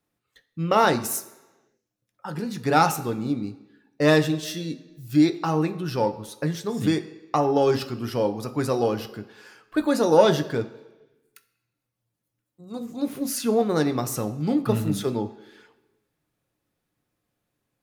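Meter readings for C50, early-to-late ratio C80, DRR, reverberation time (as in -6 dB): 14.0 dB, 16.5 dB, 7.0 dB, 1.1 s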